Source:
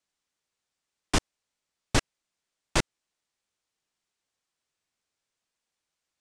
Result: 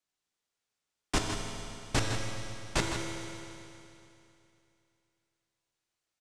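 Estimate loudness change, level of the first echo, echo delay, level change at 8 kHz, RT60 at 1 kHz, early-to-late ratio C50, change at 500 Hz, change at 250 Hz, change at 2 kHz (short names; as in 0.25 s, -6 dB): -5.0 dB, -9.0 dB, 0.159 s, -2.0 dB, 2.8 s, 1.0 dB, -1.5 dB, -2.0 dB, -2.0 dB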